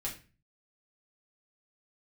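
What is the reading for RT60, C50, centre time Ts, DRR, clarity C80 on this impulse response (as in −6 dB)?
0.35 s, 9.5 dB, 20 ms, −5.0 dB, 15.0 dB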